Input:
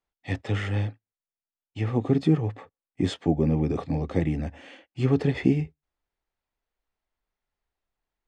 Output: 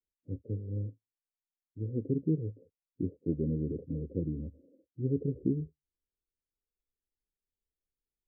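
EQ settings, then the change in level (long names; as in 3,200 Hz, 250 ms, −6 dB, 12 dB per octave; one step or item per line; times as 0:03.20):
Butterworth low-pass 520 Hz 72 dB per octave
−8.5 dB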